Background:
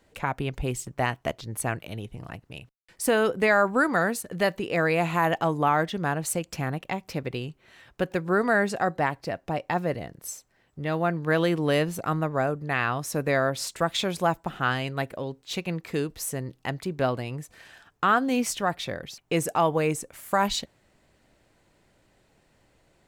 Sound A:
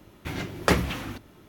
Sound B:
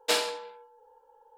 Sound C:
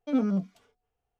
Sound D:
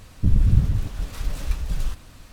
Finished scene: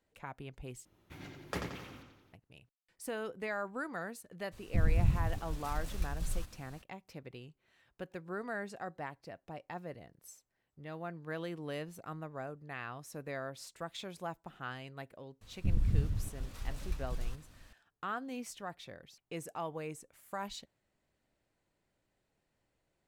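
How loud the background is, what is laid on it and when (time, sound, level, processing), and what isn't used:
background -17 dB
0.85 replace with A -17.5 dB + analogue delay 88 ms, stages 4096, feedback 52%, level -5 dB
4.51 add D -11 dB, fades 0.02 s + high shelf 6500 Hz +5.5 dB
15.41 add D -12.5 dB
not used: B, C

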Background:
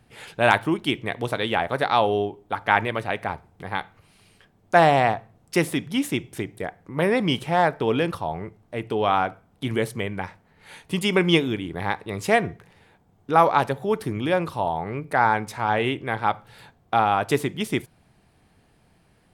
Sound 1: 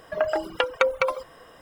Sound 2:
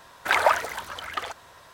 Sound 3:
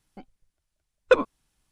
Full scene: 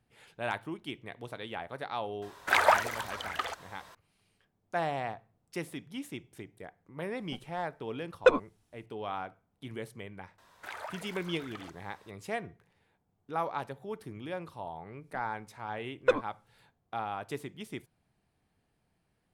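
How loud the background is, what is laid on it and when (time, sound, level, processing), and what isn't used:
background -16 dB
2.22 add 2 -3 dB
7.15 add 3 -3 dB
10.38 add 2 -11.5 dB + compressor 2:1, threshold -34 dBFS
14.97 add 3 -7 dB, fades 0.10 s
not used: 1

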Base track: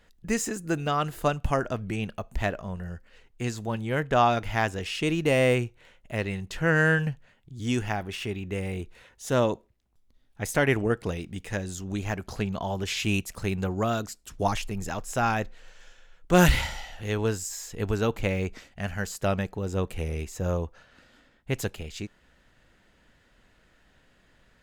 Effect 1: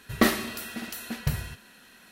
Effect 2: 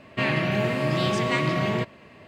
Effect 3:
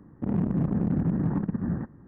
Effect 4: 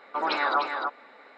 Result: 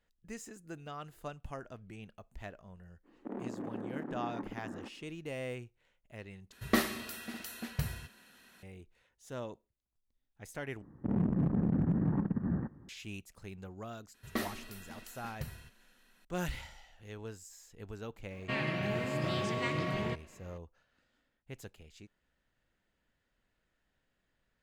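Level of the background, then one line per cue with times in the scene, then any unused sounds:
base track -18 dB
3.03 add 3 -6 dB, fades 0.05 s + HPF 290 Hz 24 dB/oct
6.52 replace with 1 -7 dB
10.82 replace with 3 -4.5 dB
14.14 add 1 -14.5 dB
18.31 add 2 -10 dB
not used: 4

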